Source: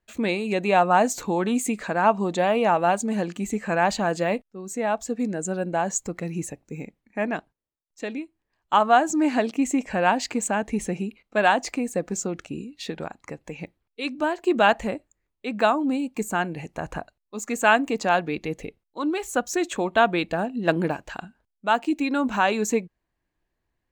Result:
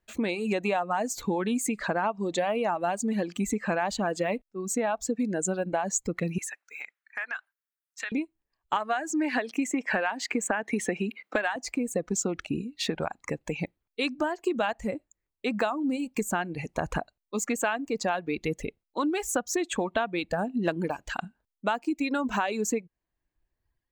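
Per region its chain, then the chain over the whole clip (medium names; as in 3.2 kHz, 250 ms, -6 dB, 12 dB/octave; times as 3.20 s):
6.38–8.12 s: resonant high-pass 1.5 kHz, resonance Q 3.2 + compression 5:1, threshold -36 dBFS
8.76–11.56 s: high-pass 230 Hz + peaking EQ 1.8 kHz +8 dB 0.86 oct + three bands compressed up and down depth 70%
whole clip: level rider gain up to 5.5 dB; reverb removal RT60 1.2 s; compression 10:1, threshold -24 dBFS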